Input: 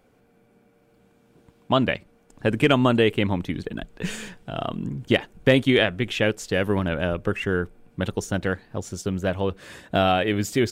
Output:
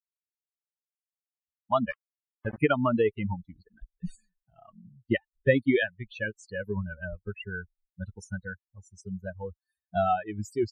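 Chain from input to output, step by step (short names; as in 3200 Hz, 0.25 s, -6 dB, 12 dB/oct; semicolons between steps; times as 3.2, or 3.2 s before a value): per-bin expansion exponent 3; 1.89–2.58 sample gate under -37 dBFS; loudest bins only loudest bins 64; resonant high shelf 2400 Hz -7.5 dB, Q 1.5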